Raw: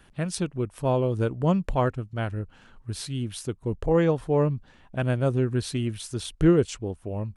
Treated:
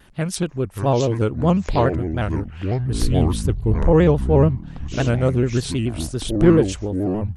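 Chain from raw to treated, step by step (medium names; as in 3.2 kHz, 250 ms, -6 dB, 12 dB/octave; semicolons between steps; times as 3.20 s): ever faster or slower copies 490 ms, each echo -7 st, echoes 3, each echo -6 dB; 2.94–4.49 s: bass shelf 120 Hz +10 dB; vibrato with a chosen wave square 7 Hz, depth 100 cents; trim +5 dB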